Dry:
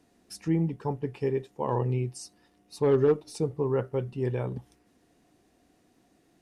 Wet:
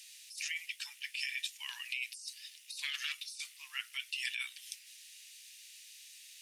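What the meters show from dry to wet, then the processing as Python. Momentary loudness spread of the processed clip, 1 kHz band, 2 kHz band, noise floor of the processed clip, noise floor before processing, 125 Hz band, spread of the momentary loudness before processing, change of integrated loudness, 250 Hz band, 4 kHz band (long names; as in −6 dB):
15 LU, −22.5 dB, +9.0 dB, −58 dBFS, −66 dBFS, below −40 dB, 13 LU, −10.5 dB, below −40 dB, +12.0 dB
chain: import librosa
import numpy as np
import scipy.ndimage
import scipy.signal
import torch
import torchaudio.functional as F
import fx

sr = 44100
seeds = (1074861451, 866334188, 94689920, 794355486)

y = scipy.signal.sosfilt(scipy.signal.butter(6, 2400.0, 'highpass', fs=sr, output='sos'), x)
y = fx.over_compress(y, sr, threshold_db=-57.0, ratio=-1.0)
y = y * librosa.db_to_amplitude(16.5)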